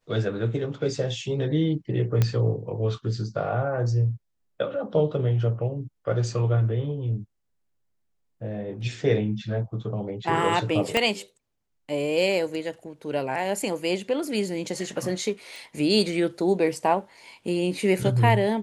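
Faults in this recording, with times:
2.22 pop -9 dBFS
10.97 pop -8 dBFS
15.56 pop

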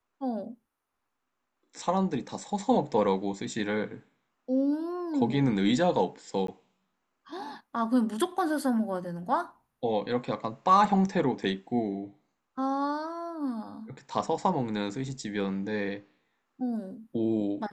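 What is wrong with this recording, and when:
6.47–6.48 gap 13 ms

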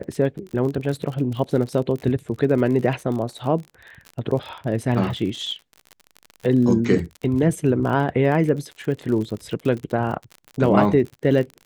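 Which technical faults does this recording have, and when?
crackle 43/s -29 dBFS

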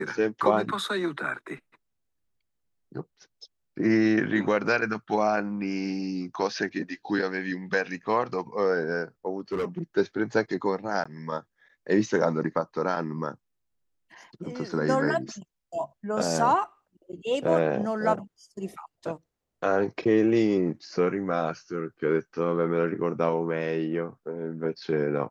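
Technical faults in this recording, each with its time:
9.4–9.83 clipped -24.5 dBFS
11.04–11.05 gap 15 ms

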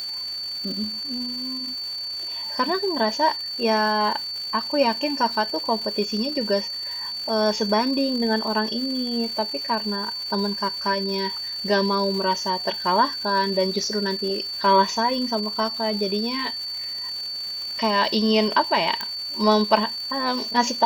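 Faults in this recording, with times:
crackle 430/s -32 dBFS
tone 4500 Hz -28 dBFS
19.01 pop

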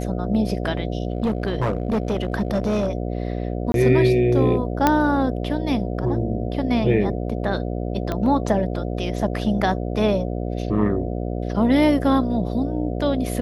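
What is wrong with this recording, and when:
buzz 60 Hz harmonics 12 -26 dBFS
1.1–2.9 clipped -17 dBFS
3.72–3.74 gap 22 ms
4.87 pop -3 dBFS
8.12 pop -12 dBFS

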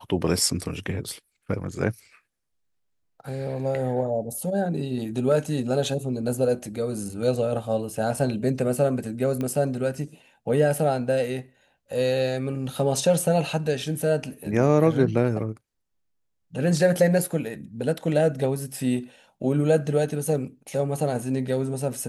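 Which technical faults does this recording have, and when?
9.41 pop -17 dBFS

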